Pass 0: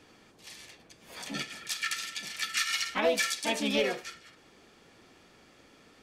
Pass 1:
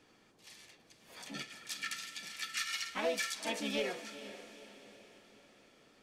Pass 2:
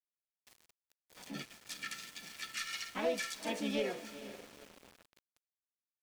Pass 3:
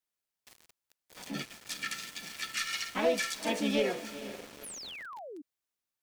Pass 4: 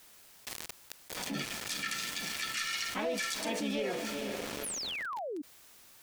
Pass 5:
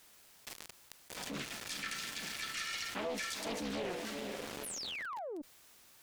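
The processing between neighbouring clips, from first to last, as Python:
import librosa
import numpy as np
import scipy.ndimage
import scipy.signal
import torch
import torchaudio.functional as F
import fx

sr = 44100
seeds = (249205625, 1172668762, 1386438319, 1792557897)

y1 = fx.peak_eq(x, sr, hz=69.0, db=-7.5, octaves=0.61)
y1 = fx.echo_diffused(y1, sr, ms=475, feedback_pct=48, wet_db=-13.0)
y1 = y1 * librosa.db_to_amplitude(-7.5)
y2 = fx.tilt_shelf(y1, sr, db=3.5, hz=660.0)
y2 = np.where(np.abs(y2) >= 10.0 ** (-50.5 / 20.0), y2, 0.0)
y3 = fx.spec_paint(y2, sr, seeds[0], shape='fall', start_s=4.63, length_s=0.79, low_hz=270.0, high_hz=12000.0, level_db=-50.0)
y3 = y3 * librosa.db_to_amplitude(6.0)
y4 = fx.env_flatten(y3, sr, amount_pct=70)
y4 = y4 * librosa.db_to_amplitude(-8.0)
y5 = fx.diode_clip(y4, sr, knee_db=-29.0)
y5 = fx.doppler_dist(y5, sr, depth_ms=0.67)
y5 = y5 * librosa.db_to_amplitude(-3.0)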